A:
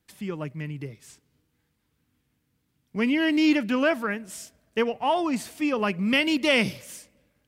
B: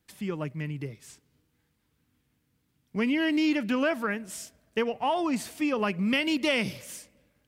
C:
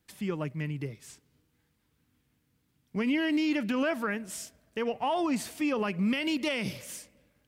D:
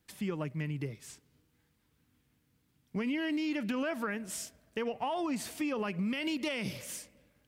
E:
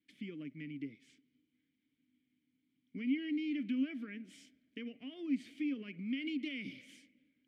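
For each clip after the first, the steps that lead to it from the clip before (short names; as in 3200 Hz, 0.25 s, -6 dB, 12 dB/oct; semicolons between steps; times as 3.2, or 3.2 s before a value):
compressor 2.5:1, threshold -24 dBFS, peak gain reduction 5.5 dB
limiter -21 dBFS, peak gain reduction 7.5 dB
compressor 4:1, threshold -31 dBFS, peak gain reduction 6 dB
vowel filter i; gain +3.5 dB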